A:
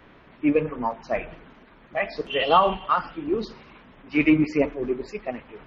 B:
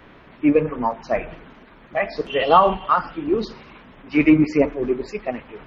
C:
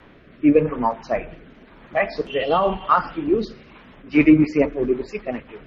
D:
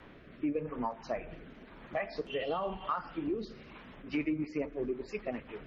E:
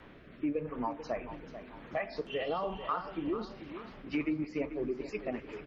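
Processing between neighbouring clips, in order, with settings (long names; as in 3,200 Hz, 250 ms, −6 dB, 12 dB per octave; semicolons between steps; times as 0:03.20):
dynamic equaliser 3,100 Hz, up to −6 dB, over −40 dBFS, Q 1.4; level +4.5 dB
rotating-speaker cabinet horn 0.9 Hz, later 5.5 Hz, at 0:03.56; level +2 dB
downward compressor 4 to 1, threshold −28 dBFS, peak gain reduction 16.5 dB; level −5 dB
repeating echo 440 ms, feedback 45%, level −12 dB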